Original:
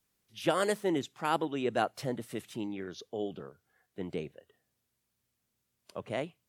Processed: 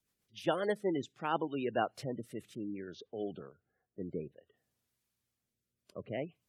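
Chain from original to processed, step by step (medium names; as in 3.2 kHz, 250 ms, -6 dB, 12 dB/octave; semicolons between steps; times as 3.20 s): rotary cabinet horn 7.5 Hz, later 0.6 Hz, at 0.34 s; spectral gate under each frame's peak -25 dB strong; 2.55–4.00 s: level-controlled noise filter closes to 930 Hz, open at -35.5 dBFS; trim -1.5 dB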